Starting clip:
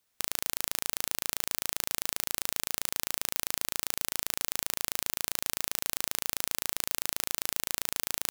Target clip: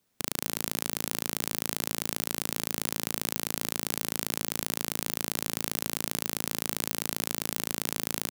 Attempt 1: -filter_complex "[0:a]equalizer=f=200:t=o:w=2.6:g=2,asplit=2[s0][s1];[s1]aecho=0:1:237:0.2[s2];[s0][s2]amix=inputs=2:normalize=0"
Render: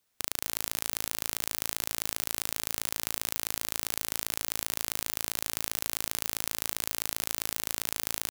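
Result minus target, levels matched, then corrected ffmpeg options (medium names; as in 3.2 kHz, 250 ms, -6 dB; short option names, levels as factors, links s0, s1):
250 Hz band -9.5 dB
-filter_complex "[0:a]equalizer=f=200:t=o:w=2.6:g=13,asplit=2[s0][s1];[s1]aecho=0:1:237:0.2[s2];[s0][s2]amix=inputs=2:normalize=0"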